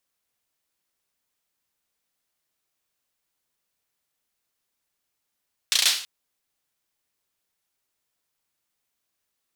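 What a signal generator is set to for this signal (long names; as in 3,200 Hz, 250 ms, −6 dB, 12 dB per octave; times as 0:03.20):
synth clap length 0.33 s, bursts 5, apart 34 ms, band 3,800 Hz, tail 0.46 s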